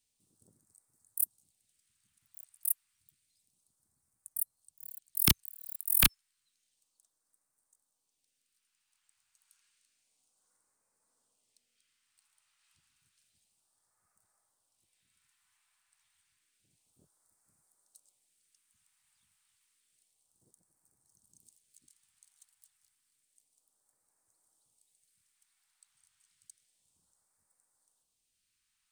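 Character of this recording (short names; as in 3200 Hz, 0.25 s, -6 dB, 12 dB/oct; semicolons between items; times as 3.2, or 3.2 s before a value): phasing stages 2, 0.3 Hz, lowest notch 390–2900 Hz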